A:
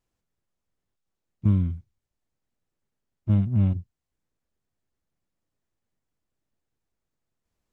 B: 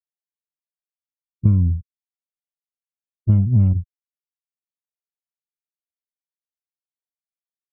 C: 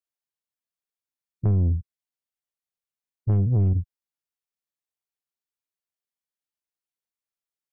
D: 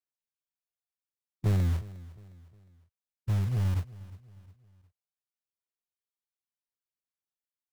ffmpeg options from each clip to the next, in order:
ffmpeg -i in.wav -af "afftfilt=real='re*gte(hypot(re,im),0.00631)':imag='im*gte(hypot(re,im),0.00631)':win_size=1024:overlap=0.75,lowshelf=frequency=160:gain=11,acompressor=threshold=-16dB:ratio=4,volume=4dB" out.wav
ffmpeg -i in.wav -af "asoftclip=type=tanh:threshold=-16.5dB" out.wav
ffmpeg -i in.wav -filter_complex "[0:a]aphaser=in_gain=1:out_gain=1:delay=1.4:decay=0.39:speed=0.7:type=sinusoidal,acrossover=split=130|280[link_01][link_02][link_03];[link_01]acrusher=bits=3:mode=log:mix=0:aa=0.000001[link_04];[link_04][link_02][link_03]amix=inputs=3:normalize=0,aecho=1:1:358|716|1074:0.112|0.0471|0.0198,volume=-9dB" out.wav

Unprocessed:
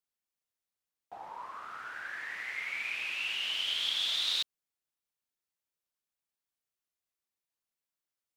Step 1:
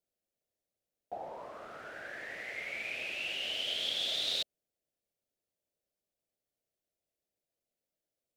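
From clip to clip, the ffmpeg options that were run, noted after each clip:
ffmpeg -i in.wav -af "lowshelf=frequency=790:width_type=q:width=3:gain=8.5,volume=-2dB" out.wav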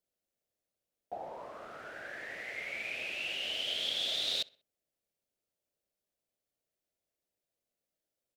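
ffmpeg -i in.wav -filter_complex "[0:a]asplit=2[link_01][link_02];[link_02]adelay=63,lowpass=frequency=3800:poles=1,volume=-23dB,asplit=2[link_03][link_04];[link_04]adelay=63,lowpass=frequency=3800:poles=1,volume=0.48,asplit=2[link_05][link_06];[link_06]adelay=63,lowpass=frequency=3800:poles=1,volume=0.48[link_07];[link_01][link_03][link_05][link_07]amix=inputs=4:normalize=0" out.wav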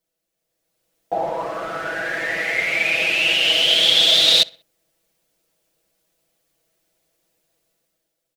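ffmpeg -i in.wav -af "aecho=1:1:6.1:0.96,dynaudnorm=framelen=160:gausssize=9:maxgain=10.5dB,volume=6dB" out.wav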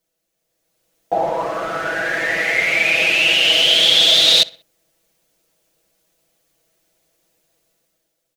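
ffmpeg -i in.wav -filter_complex "[0:a]equalizer=frequency=6400:width=6.6:gain=2.5,asplit=2[link_01][link_02];[link_02]alimiter=limit=-11.5dB:level=0:latency=1:release=24,volume=-2dB[link_03];[link_01][link_03]amix=inputs=2:normalize=0,volume=-1dB" out.wav

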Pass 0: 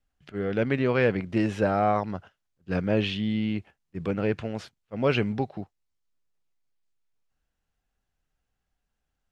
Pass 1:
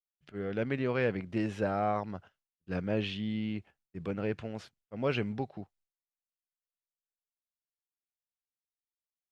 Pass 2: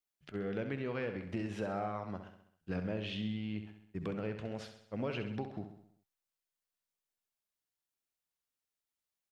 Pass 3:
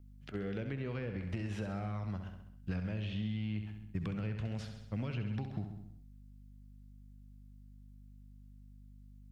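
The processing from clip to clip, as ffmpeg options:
ffmpeg -i in.wav -af "agate=range=-33dB:threshold=-56dB:ratio=3:detection=peak,volume=-7dB" out.wav
ffmpeg -i in.wav -filter_complex "[0:a]acompressor=threshold=-38dB:ratio=6,asplit=2[link_01][link_02];[link_02]aecho=0:1:66|132|198|264|330|396:0.355|0.192|0.103|0.0559|0.0302|0.0163[link_03];[link_01][link_03]amix=inputs=2:normalize=0,volume=3dB" out.wav
ffmpeg -i in.wav -filter_complex "[0:a]asubboost=boost=7.5:cutoff=160,aeval=exprs='val(0)+0.00141*(sin(2*PI*50*n/s)+sin(2*PI*2*50*n/s)/2+sin(2*PI*3*50*n/s)/3+sin(2*PI*4*50*n/s)/4+sin(2*PI*5*50*n/s)/5)':channel_layout=same,acrossover=split=450|1800[link_01][link_02][link_03];[link_01]acompressor=threshold=-40dB:ratio=4[link_04];[link_02]acompressor=threshold=-53dB:ratio=4[link_05];[link_03]acompressor=threshold=-55dB:ratio=4[link_06];[link_04][link_05][link_06]amix=inputs=3:normalize=0,volume=3.5dB" out.wav

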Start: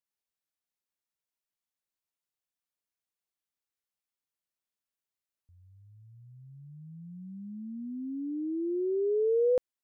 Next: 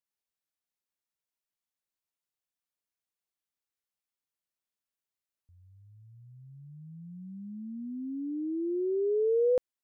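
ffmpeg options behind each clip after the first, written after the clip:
ffmpeg -i in.wav -af anull out.wav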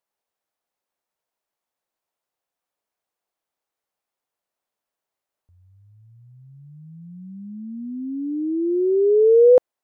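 ffmpeg -i in.wav -af "equalizer=frequency=680:width=0.58:gain=13,volume=2.5dB" out.wav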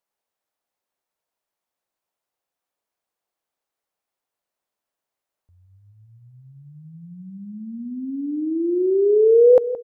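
ffmpeg -i in.wav -filter_complex "[0:a]asplit=2[link_01][link_02];[link_02]adelay=171,lowpass=frequency=960:poles=1,volume=-13dB,asplit=2[link_03][link_04];[link_04]adelay=171,lowpass=frequency=960:poles=1,volume=0.42,asplit=2[link_05][link_06];[link_06]adelay=171,lowpass=frequency=960:poles=1,volume=0.42,asplit=2[link_07][link_08];[link_08]adelay=171,lowpass=frequency=960:poles=1,volume=0.42[link_09];[link_01][link_03][link_05][link_07][link_09]amix=inputs=5:normalize=0" out.wav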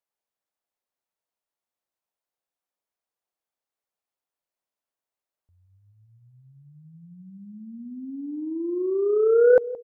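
ffmpeg -i in.wav -af "aeval=exprs='0.562*(cos(1*acos(clip(val(0)/0.562,-1,1)))-cos(1*PI/2))+0.0794*(cos(3*acos(clip(val(0)/0.562,-1,1)))-cos(3*PI/2))':channel_layout=same,volume=-2dB" out.wav

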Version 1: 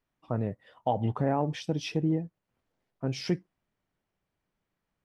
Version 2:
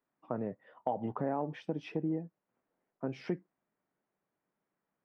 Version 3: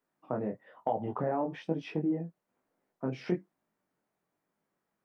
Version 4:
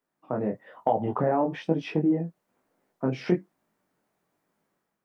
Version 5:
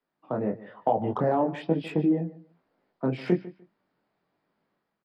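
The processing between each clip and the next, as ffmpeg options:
ffmpeg -i in.wav -filter_complex "[0:a]acrossover=split=160 2200:gain=0.0708 1 0.0794[link_01][link_02][link_03];[link_01][link_02][link_03]amix=inputs=3:normalize=0,acompressor=threshold=-33dB:ratio=2" out.wav
ffmpeg -i in.wav -af "flanger=delay=18:depth=6.2:speed=1.1,volume=6dB" out.wav
ffmpeg -i in.wav -af "dynaudnorm=framelen=100:gausssize=7:maxgain=7dB" out.wav
ffmpeg -i in.wav -filter_complex "[0:a]aresample=11025,aresample=44100,aecho=1:1:149|298:0.126|0.0239,acrossover=split=170|870|980[link_01][link_02][link_03][link_04];[link_04]asoftclip=type=tanh:threshold=-35dB[link_05];[link_01][link_02][link_03][link_05]amix=inputs=4:normalize=0" out.wav

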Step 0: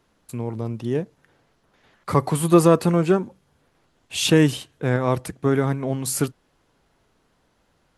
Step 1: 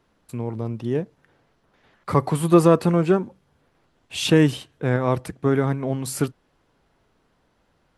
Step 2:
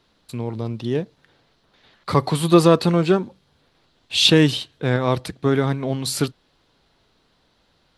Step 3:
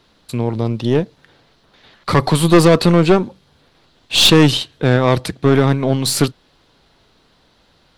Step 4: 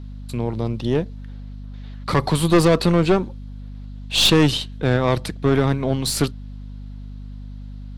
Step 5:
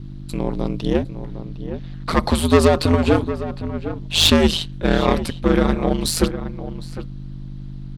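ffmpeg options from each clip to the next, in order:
ffmpeg -i in.wav -af "highshelf=frequency=4800:gain=-6.5,bandreject=frequency=6700:width=28" out.wav
ffmpeg -i in.wav -af "equalizer=frequency=4000:width=1.5:gain=13,volume=1dB" out.wav
ffmpeg -i in.wav -af "aeval=exprs='(tanh(5.01*val(0)+0.45)-tanh(0.45))/5.01':channel_layout=same,volume=9dB" out.wav
ffmpeg -i in.wav -af "aeval=exprs='val(0)+0.0398*(sin(2*PI*50*n/s)+sin(2*PI*2*50*n/s)/2+sin(2*PI*3*50*n/s)/3+sin(2*PI*4*50*n/s)/4+sin(2*PI*5*50*n/s)/5)':channel_layout=same,volume=-5dB" out.wav
ffmpeg -i in.wav -filter_complex "[0:a]asplit=2[link_01][link_02];[link_02]adelay=758,volume=-11dB,highshelf=frequency=4000:gain=-17.1[link_03];[link_01][link_03]amix=inputs=2:normalize=0,aeval=exprs='val(0)*sin(2*PI*81*n/s)':channel_layout=same,volume=4dB" out.wav

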